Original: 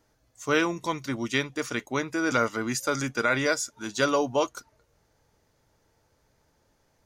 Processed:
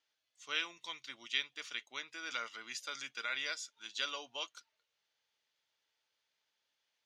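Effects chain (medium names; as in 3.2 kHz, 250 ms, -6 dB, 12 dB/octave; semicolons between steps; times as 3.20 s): band-pass filter 3.2 kHz, Q 2.5; trim -1.5 dB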